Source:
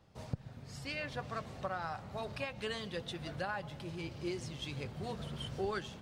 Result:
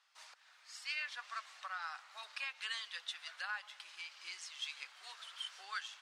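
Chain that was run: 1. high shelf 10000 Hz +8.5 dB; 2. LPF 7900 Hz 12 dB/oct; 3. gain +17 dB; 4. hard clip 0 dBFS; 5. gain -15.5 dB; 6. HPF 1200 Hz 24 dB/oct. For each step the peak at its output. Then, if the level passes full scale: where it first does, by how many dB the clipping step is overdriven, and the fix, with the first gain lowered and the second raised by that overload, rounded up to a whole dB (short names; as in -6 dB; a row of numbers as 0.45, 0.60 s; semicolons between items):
-22.5, -22.5, -5.5, -5.5, -21.0, -26.5 dBFS; no overload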